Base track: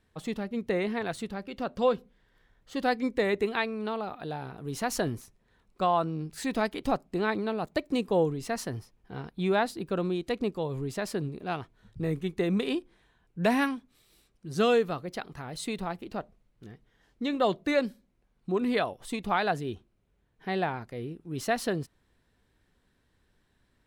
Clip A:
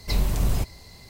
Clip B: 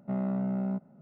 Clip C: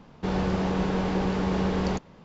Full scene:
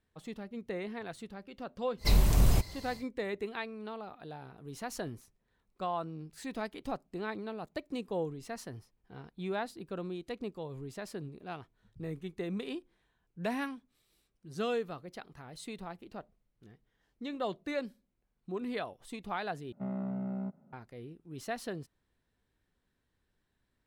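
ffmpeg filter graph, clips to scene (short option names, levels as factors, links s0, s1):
-filter_complex "[0:a]volume=0.335,asplit=2[s0][s1];[s0]atrim=end=19.724[s2];[2:a]atrim=end=1.01,asetpts=PTS-STARTPTS,volume=0.501[s3];[s1]atrim=start=20.726[s4];[1:a]atrim=end=1.09,asetpts=PTS-STARTPTS,volume=0.891,afade=t=in:d=0.1,afade=t=out:st=0.99:d=0.1,adelay=1970[s5];[s2][s3]acrossfade=d=0.004:c1=hsin:c2=hsin[s6];[s6][s4]acrossfade=d=0.004:c1=hsin:c2=hsin[s7];[s7][s5]amix=inputs=2:normalize=0"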